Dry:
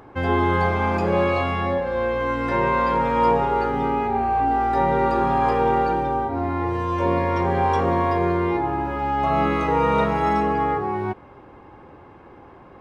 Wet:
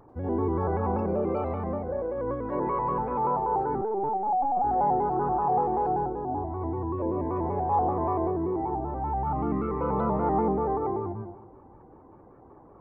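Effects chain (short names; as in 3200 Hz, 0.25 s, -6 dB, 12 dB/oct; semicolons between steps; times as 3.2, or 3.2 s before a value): formant sharpening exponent 2; 9.23–9.81 band shelf 670 Hz -10 dB 1.2 oct; reverb RT60 0.75 s, pre-delay 88 ms, DRR 2 dB; 3.81–4.64 LPC vocoder at 8 kHz pitch kept; 7.16–7.83 air absorption 99 m; shaped vibrato square 5.2 Hz, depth 100 cents; gain -8.5 dB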